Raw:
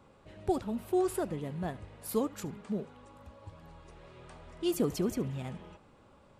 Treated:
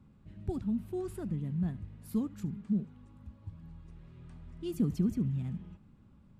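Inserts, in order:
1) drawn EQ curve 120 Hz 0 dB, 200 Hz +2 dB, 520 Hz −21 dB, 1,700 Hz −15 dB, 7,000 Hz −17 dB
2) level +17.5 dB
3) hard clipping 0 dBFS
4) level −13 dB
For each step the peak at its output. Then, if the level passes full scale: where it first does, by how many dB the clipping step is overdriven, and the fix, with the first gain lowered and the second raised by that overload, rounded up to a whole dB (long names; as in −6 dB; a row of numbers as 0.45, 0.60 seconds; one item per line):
−23.5, −6.0, −6.0, −19.0 dBFS
no step passes full scale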